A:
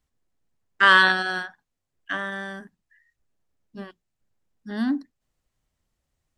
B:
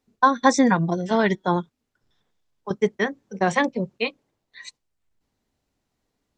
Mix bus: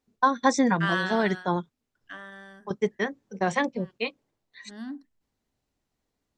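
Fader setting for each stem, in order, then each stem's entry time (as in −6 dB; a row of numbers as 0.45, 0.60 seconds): −13.0, −4.5 decibels; 0.00, 0.00 seconds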